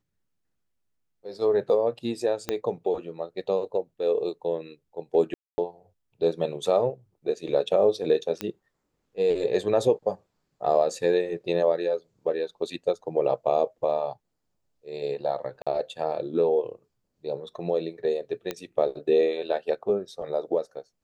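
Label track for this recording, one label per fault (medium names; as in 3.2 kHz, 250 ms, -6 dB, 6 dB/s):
2.490000	2.490000	pop -12 dBFS
5.340000	5.580000	dropout 240 ms
8.410000	8.410000	pop -14 dBFS
15.620000	15.670000	dropout 46 ms
18.510000	18.510000	pop -15 dBFS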